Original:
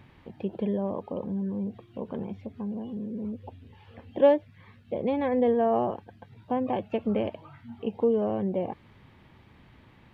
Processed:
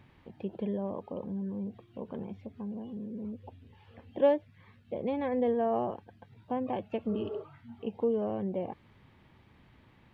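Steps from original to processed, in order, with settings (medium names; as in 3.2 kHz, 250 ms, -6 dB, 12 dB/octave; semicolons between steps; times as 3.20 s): spectral replace 7.15–7.40 s, 370–2500 Hz before; trim -5 dB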